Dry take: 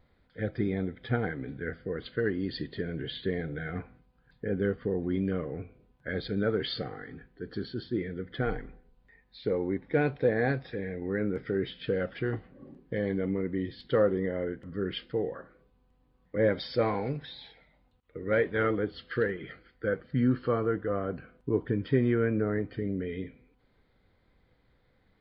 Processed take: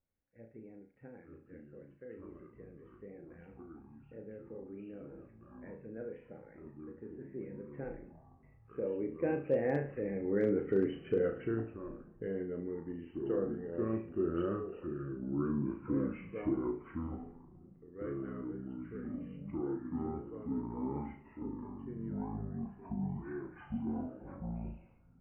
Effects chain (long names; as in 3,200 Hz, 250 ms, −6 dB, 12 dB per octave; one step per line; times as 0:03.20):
source passing by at 0:10.60, 25 m/s, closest 18 metres
delay with pitch and tempo change per echo 736 ms, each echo −6 semitones, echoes 3
high-shelf EQ 2,400 Hz −7.5 dB
in parallel at −1.5 dB: downward compressor 6 to 1, threshold −59 dBFS, peak gain reduction 30 dB
on the sum: Chebyshev low-pass filter 3,000 Hz, order 10
flutter between parallel walls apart 6.1 metres, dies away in 0.35 s
on a send at −23 dB: convolution reverb RT60 2.2 s, pre-delay 4 ms
on the sum: dynamic equaliser 370 Hz, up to +7 dB, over −58 dBFS, Q 0.73
hard clipping −15 dBFS, distortion −40 dB
level −6 dB